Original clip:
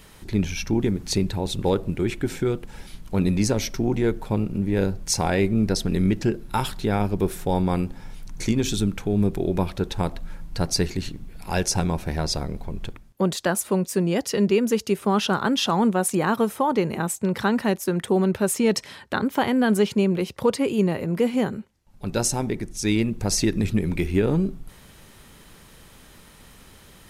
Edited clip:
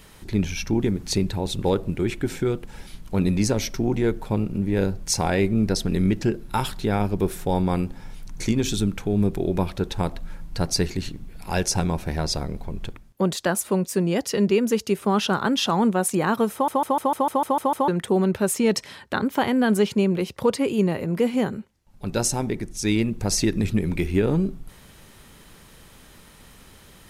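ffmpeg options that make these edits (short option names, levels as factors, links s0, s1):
-filter_complex "[0:a]asplit=10[s0][s1][s2][s3][s4][s5][s6][s7][s8][s9];[s0]atrim=end=16.682[s10];[s1]atrim=start=16.528:end=16.682[s11];[s2]atrim=start=16.528:end=16.682[s12];[s3]atrim=start=16.528:end=16.682[s13];[s4]atrim=start=16.528:end=16.682[s14];[s5]atrim=start=16.528:end=16.682[s15];[s6]atrim=start=16.528:end=16.682[s16];[s7]atrim=start=16.528:end=16.682[s17];[s8]atrim=start=16.528:end=16.682[s18];[s9]atrim=start=17.878[s19];[s10][s11]acrossfade=d=0.004:c1=hsin:c2=hsin[s20];[s20][s12]acrossfade=d=0.004:c1=hsin:c2=hsin[s21];[s21][s13]acrossfade=d=0.004:c1=hsin:c2=hsin[s22];[s22][s14]acrossfade=d=0.004:c1=hsin:c2=hsin[s23];[s23][s15]acrossfade=d=0.004:c1=hsin:c2=hsin[s24];[s24][s16]acrossfade=d=0.004:c1=hsin:c2=hsin[s25];[s25][s17]acrossfade=d=0.004:c1=hsin:c2=hsin[s26];[s26][s18]acrossfade=d=0.004:c1=hsin:c2=hsin[s27];[s27][s19]acrossfade=d=0.004:c1=hsin:c2=hsin"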